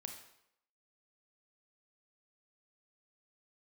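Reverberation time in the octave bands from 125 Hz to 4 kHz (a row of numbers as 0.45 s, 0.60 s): 0.65 s, 0.70 s, 0.75 s, 0.75 s, 0.70 s, 0.65 s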